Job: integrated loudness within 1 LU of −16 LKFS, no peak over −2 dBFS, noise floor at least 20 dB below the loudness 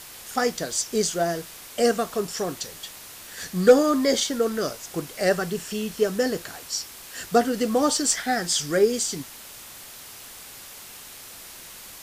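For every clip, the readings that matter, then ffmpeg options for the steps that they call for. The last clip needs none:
background noise floor −43 dBFS; target noise floor −44 dBFS; integrated loudness −24.0 LKFS; sample peak −5.0 dBFS; target loudness −16.0 LKFS
→ -af "afftdn=noise_reduction=6:noise_floor=-43"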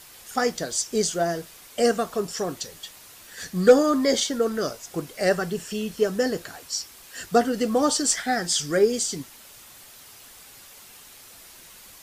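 background noise floor −48 dBFS; integrated loudness −24.0 LKFS; sample peak −5.0 dBFS; target loudness −16.0 LKFS
→ -af "volume=8dB,alimiter=limit=-2dB:level=0:latency=1"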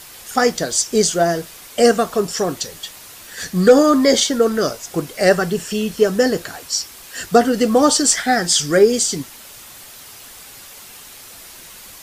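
integrated loudness −16.5 LKFS; sample peak −2.0 dBFS; background noise floor −40 dBFS

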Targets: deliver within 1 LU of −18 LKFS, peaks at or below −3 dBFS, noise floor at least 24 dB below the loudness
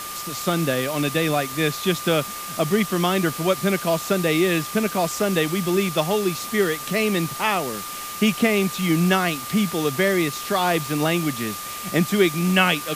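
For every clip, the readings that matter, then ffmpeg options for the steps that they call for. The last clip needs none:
interfering tone 1,200 Hz; level of the tone −34 dBFS; background noise floor −33 dBFS; target noise floor −46 dBFS; integrated loudness −22.0 LKFS; sample peak −3.0 dBFS; target loudness −18.0 LKFS
→ -af "bandreject=frequency=1200:width=30"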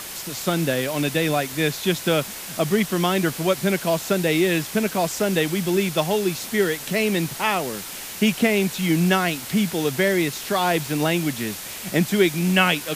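interfering tone none found; background noise floor −35 dBFS; target noise floor −46 dBFS
→ -af "afftdn=noise_reduction=11:noise_floor=-35"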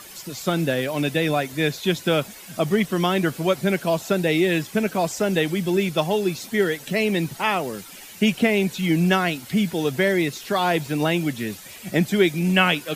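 background noise floor −42 dBFS; target noise floor −47 dBFS
→ -af "afftdn=noise_reduction=6:noise_floor=-42"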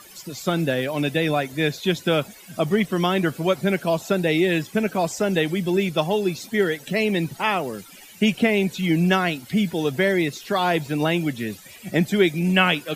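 background noise floor −45 dBFS; target noise floor −47 dBFS
→ -af "afftdn=noise_reduction=6:noise_floor=-45"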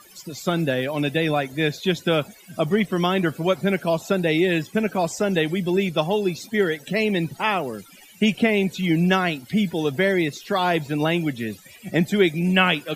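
background noise floor −48 dBFS; integrated loudness −22.5 LKFS; sample peak −3.0 dBFS; target loudness −18.0 LKFS
→ -af "volume=4.5dB,alimiter=limit=-3dB:level=0:latency=1"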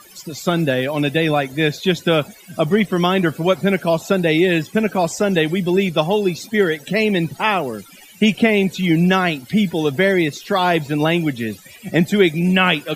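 integrated loudness −18.0 LKFS; sample peak −3.0 dBFS; background noise floor −44 dBFS

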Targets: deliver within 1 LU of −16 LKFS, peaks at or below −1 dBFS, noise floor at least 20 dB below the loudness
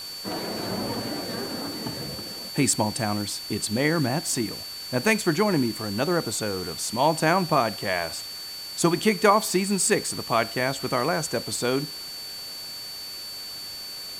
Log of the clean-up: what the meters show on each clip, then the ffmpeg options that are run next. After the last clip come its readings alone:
interfering tone 4,500 Hz; level of the tone −35 dBFS; background noise floor −37 dBFS; target noise floor −46 dBFS; integrated loudness −25.5 LKFS; sample peak −5.0 dBFS; target loudness −16.0 LKFS
→ -af "bandreject=frequency=4500:width=30"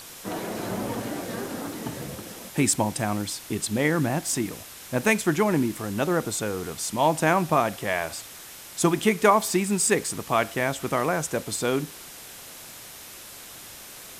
interfering tone none found; background noise floor −43 dBFS; target noise floor −46 dBFS
→ -af "afftdn=noise_reduction=6:noise_floor=-43"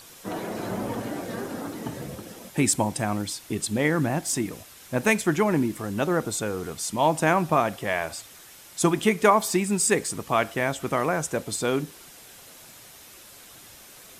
background noise floor −48 dBFS; integrated loudness −25.5 LKFS; sample peak −5.5 dBFS; target loudness −16.0 LKFS
→ -af "volume=9.5dB,alimiter=limit=-1dB:level=0:latency=1"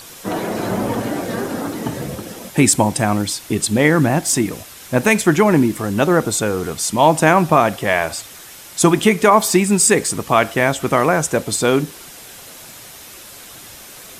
integrated loudness −16.5 LKFS; sample peak −1.0 dBFS; background noise floor −39 dBFS

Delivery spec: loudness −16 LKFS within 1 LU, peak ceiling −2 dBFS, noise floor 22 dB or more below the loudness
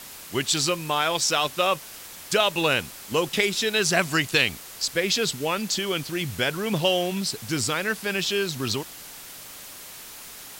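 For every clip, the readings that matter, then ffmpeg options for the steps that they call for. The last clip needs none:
background noise floor −42 dBFS; target noise floor −46 dBFS; integrated loudness −24.0 LKFS; sample peak −6.5 dBFS; target loudness −16.0 LKFS
→ -af "afftdn=noise_reduction=6:noise_floor=-42"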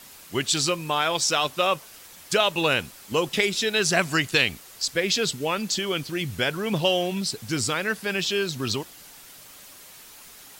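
background noise floor −47 dBFS; integrated loudness −24.0 LKFS; sample peak −6.5 dBFS; target loudness −16.0 LKFS
→ -af "volume=8dB,alimiter=limit=-2dB:level=0:latency=1"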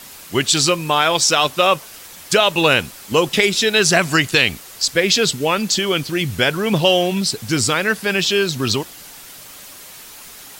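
integrated loudness −16.5 LKFS; sample peak −2.0 dBFS; background noise floor −39 dBFS

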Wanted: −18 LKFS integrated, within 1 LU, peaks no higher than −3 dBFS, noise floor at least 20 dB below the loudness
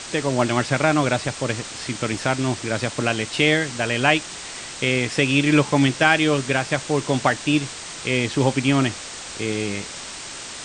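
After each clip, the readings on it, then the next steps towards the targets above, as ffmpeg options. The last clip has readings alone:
background noise floor −35 dBFS; target noise floor −41 dBFS; integrated loudness −21.0 LKFS; sample peak −1.5 dBFS; target loudness −18.0 LKFS
→ -af "afftdn=noise_reduction=6:noise_floor=-35"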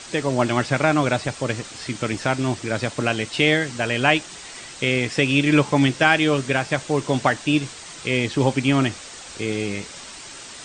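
background noise floor −39 dBFS; target noise floor −42 dBFS
→ -af "afftdn=noise_reduction=6:noise_floor=-39"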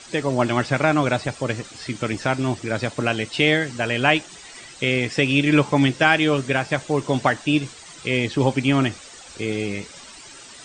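background noise floor −43 dBFS; integrated loudness −21.5 LKFS; sample peak −1.5 dBFS; target loudness −18.0 LKFS
→ -af "volume=3.5dB,alimiter=limit=-3dB:level=0:latency=1"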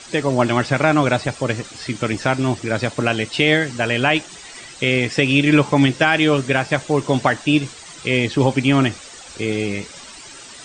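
integrated loudness −18.5 LKFS; sample peak −3.0 dBFS; background noise floor −39 dBFS

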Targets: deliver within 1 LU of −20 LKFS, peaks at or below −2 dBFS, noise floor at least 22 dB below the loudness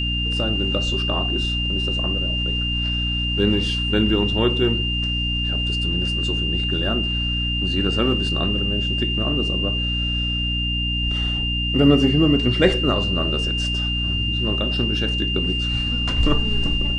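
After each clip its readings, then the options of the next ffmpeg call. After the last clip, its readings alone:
mains hum 60 Hz; hum harmonics up to 300 Hz; level of the hum −23 dBFS; interfering tone 2,800 Hz; level of the tone −23 dBFS; integrated loudness −20.5 LKFS; sample peak −3.0 dBFS; target loudness −20.0 LKFS
→ -af "bandreject=frequency=60:width_type=h:width=6,bandreject=frequency=120:width_type=h:width=6,bandreject=frequency=180:width_type=h:width=6,bandreject=frequency=240:width_type=h:width=6,bandreject=frequency=300:width_type=h:width=6"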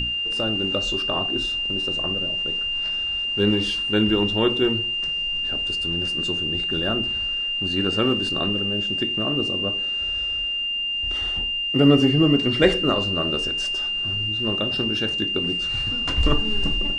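mains hum none found; interfering tone 2,800 Hz; level of the tone −23 dBFS
→ -af "bandreject=frequency=2800:width=30"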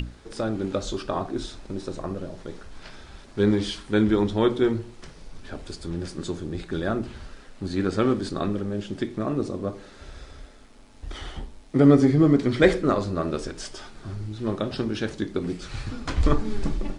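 interfering tone none found; integrated loudness −25.5 LKFS; sample peak −3.5 dBFS; target loudness −20.0 LKFS
→ -af "volume=5.5dB,alimiter=limit=-2dB:level=0:latency=1"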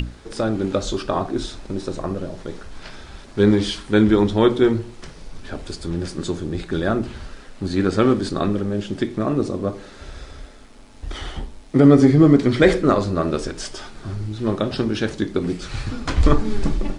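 integrated loudness −20.0 LKFS; sample peak −2.0 dBFS; background noise floor −42 dBFS

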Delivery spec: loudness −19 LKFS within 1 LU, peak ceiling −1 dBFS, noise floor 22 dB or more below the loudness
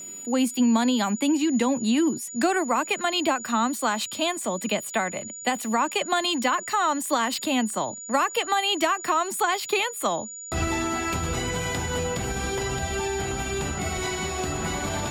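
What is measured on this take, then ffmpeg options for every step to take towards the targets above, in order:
interfering tone 6,900 Hz; level of the tone −36 dBFS; integrated loudness −25.0 LKFS; sample peak −12.0 dBFS; target loudness −19.0 LKFS
→ -af "bandreject=frequency=6900:width=30"
-af "volume=6dB"

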